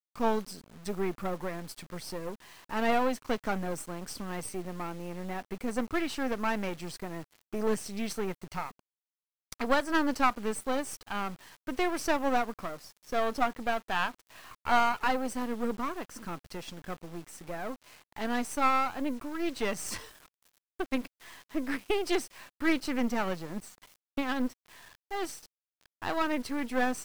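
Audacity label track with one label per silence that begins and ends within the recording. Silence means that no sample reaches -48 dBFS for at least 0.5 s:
8.790000	9.520000	silence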